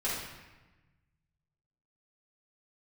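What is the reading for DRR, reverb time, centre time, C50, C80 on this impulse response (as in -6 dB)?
-8.5 dB, 1.1 s, 72 ms, 0.0 dB, 3.5 dB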